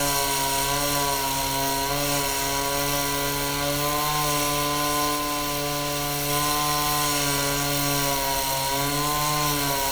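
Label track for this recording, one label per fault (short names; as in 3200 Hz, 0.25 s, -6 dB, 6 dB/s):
5.150000	6.300000	clipped -23 dBFS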